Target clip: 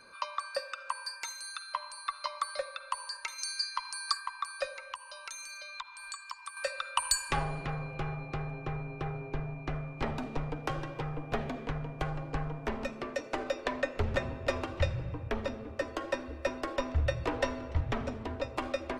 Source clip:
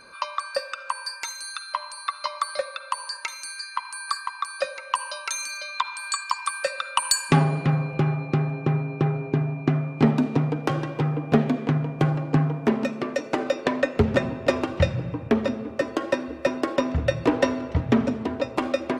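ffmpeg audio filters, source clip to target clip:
ffmpeg -i in.wav -filter_complex "[0:a]acrossover=split=500|1000[link_01][link_02][link_03];[link_01]asoftclip=type=tanh:threshold=-25.5dB[link_04];[link_04][link_02][link_03]amix=inputs=3:normalize=0,asettb=1/sr,asplit=3[link_05][link_06][link_07];[link_05]atrim=end=3.384[link_08];[link_06]atrim=start=3.38:end=4.13,asetpts=PTS-STARTPTS,afade=type=in:duration=0.004:curve=qsin,afade=type=out:start_time=0.746:duration=0.004:curve=qsin,equalizer=frequency=5400:width=1.8:gain=14.5[link_09];[link_07]atrim=start=4.126[link_10];[link_08][link_09]acrossfade=duration=0.004:curve1=hsin:curve2=qsin[link_11];[link_11][link_10]acrossfade=duration=0.004:curve1=qsin:curve2=hsin,asettb=1/sr,asplit=3[link_12][link_13][link_14];[link_12]atrim=end=4.844[link_15];[link_13]atrim=start=4.84:end=6.57,asetpts=PTS-STARTPTS,afade=type=in:duration=0.004:curve=qsin,afade=type=out:start_time=1.726:duration=0.004:curve=qsin,acompressor=threshold=-36dB:ratio=2.5[link_16];[link_14]atrim=start=6.566[link_17];[link_15][link_16]acrossfade=duration=0.004:curve1=hsin:curve2=qsin[link_18];[link_18][link_17]acrossfade=duration=0.004:curve1=qsin:curve2=hsin,asubboost=boost=11:cutoff=55,volume=-7dB" out.wav

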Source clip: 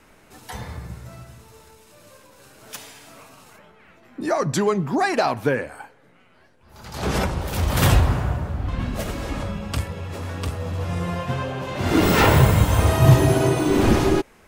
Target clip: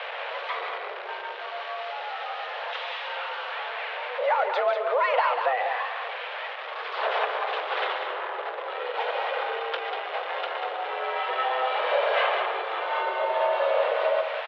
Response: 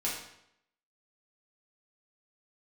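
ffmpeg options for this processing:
-filter_complex "[0:a]aeval=exprs='val(0)+0.5*0.0447*sgn(val(0))':channel_layout=same,acompressor=threshold=-20dB:ratio=6,asplit=2[link_01][link_02];[link_02]aecho=0:1:142.9|192.4:0.282|0.447[link_03];[link_01][link_03]amix=inputs=2:normalize=0,highpass=frequency=240:width_type=q:width=0.5412,highpass=frequency=240:width_type=q:width=1.307,lowpass=frequency=3300:width_type=q:width=0.5176,lowpass=frequency=3300:width_type=q:width=0.7071,lowpass=frequency=3300:width_type=q:width=1.932,afreqshift=250"

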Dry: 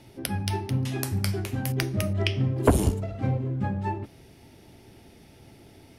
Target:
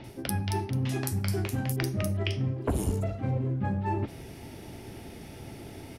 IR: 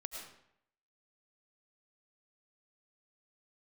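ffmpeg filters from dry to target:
-filter_complex "[0:a]areverse,acompressor=threshold=-35dB:ratio=5,areverse,acrossover=split=4200[link_01][link_02];[link_02]adelay=40[link_03];[link_01][link_03]amix=inputs=2:normalize=0,volume=8dB"

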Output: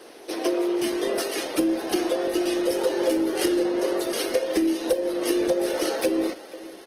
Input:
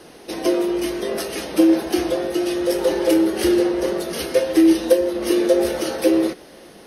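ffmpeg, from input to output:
ffmpeg -i in.wav -filter_complex "[0:a]highpass=frequency=290:width=0.5412,highpass=frequency=290:width=1.3066,acompressor=threshold=-19dB:ratio=12,asplit=2[link_01][link_02];[link_02]adelay=489.8,volume=-18dB,highshelf=frequency=4000:gain=-11[link_03];[link_01][link_03]amix=inputs=2:normalize=0" -ar 48000 -c:a libopus -b:a 16k out.opus

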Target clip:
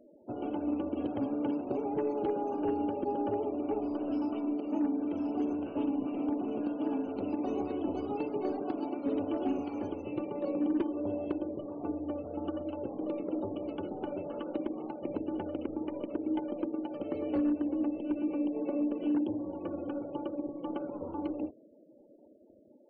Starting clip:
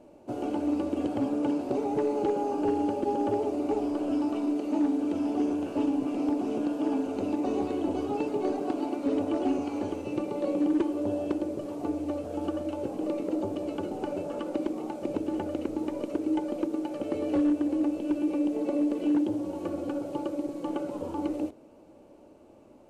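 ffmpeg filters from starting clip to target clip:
ffmpeg -i in.wav -filter_complex "[0:a]afftfilt=real='re*gte(hypot(re,im),0.00501)':imag='im*gte(hypot(re,im),0.00501)':win_size=1024:overlap=0.75,asplit=2[link_01][link_02];[link_02]asetrate=35002,aresample=44100,atempo=1.25992,volume=-17dB[link_03];[link_01][link_03]amix=inputs=2:normalize=0,volume=-4.5dB" out.wav

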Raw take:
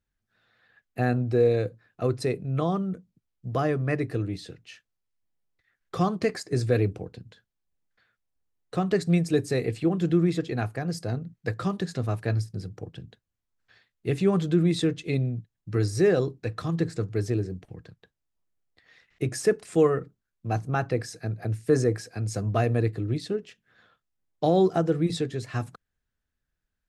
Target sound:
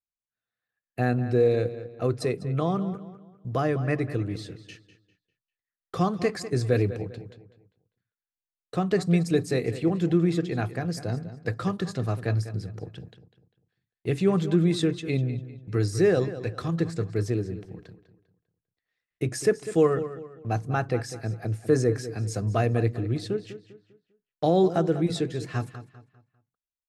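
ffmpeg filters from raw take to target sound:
ffmpeg -i in.wav -filter_complex "[0:a]agate=range=-25dB:threshold=-49dB:ratio=16:detection=peak,asplit=2[link_01][link_02];[link_02]adelay=199,lowpass=frequency=4800:poles=1,volume=-13dB,asplit=2[link_03][link_04];[link_04]adelay=199,lowpass=frequency=4800:poles=1,volume=0.36,asplit=2[link_05][link_06];[link_06]adelay=199,lowpass=frequency=4800:poles=1,volume=0.36,asplit=2[link_07][link_08];[link_08]adelay=199,lowpass=frequency=4800:poles=1,volume=0.36[link_09];[link_03][link_05][link_07][link_09]amix=inputs=4:normalize=0[link_10];[link_01][link_10]amix=inputs=2:normalize=0" out.wav

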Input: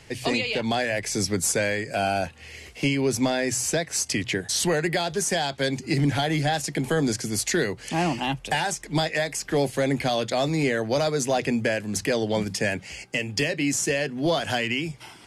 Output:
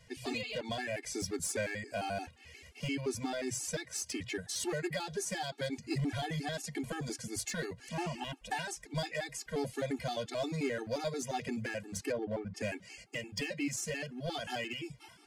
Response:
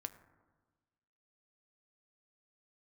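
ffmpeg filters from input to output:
-filter_complex "[0:a]asplit=3[link_01][link_02][link_03];[link_01]afade=type=out:start_time=12.11:duration=0.02[link_04];[link_02]lowpass=1400,afade=type=in:start_time=12.11:duration=0.02,afade=type=out:start_time=12.56:duration=0.02[link_05];[link_03]afade=type=in:start_time=12.56:duration=0.02[link_06];[link_04][link_05][link_06]amix=inputs=3:normalize=0,asoftclip=type=hard:threshold=-18dB,afftfilt=real='re*gt(sin(2*PI*5.7*pts/sr)*(1-2*mod(floor(b*sr/1024/230),2)),0)':imag='im*gt(sin(2*PI*5.7*pts/sr)*(1-2*mod(floor(b*sr/1024/230),2)),0)':win_size=1024:overlap=0.75,volume=-8.5dB"

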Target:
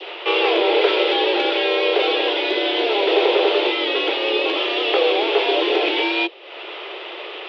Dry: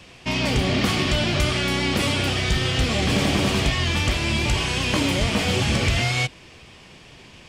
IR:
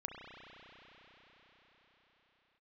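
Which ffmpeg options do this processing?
-af "acompressor=mode=upward:threshold=-28dB:ratio=2.5,adynamicequalizer=threshold=0.01:dfrequency=1200:dqfactor=0.71:tfrequency=1200:tqfactor=0.71:attack=5:release=100:ratio=0.375:range=3.5:mode=cutabove:tftype=bell,highpass=frequency=150:width_type=q:width=0.5412,highpass=frequency=150:width_type=q:width=1.307,lowpass=frequency=3500:width_type=q:width=0.5176,lowpass=frequency=3500:width_type=q:width=0.7071,lowpass=frequency=3500:width_type=q:width=1.932,afreqshift=210,volume=7dB"

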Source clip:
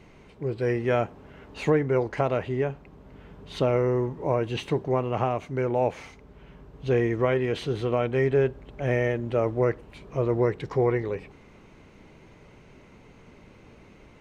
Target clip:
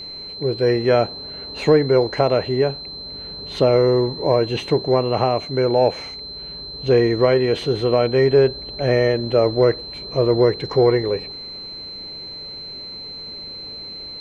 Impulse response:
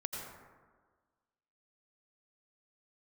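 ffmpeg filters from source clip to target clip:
-af "aeval=exprs='val(0)+0.0158*sin(2*PI*4100*n/s)':channel_layout=same,acontrast=80,equalizer=frequency=500:width=0.97:gain=5,volume=-2.5dB"

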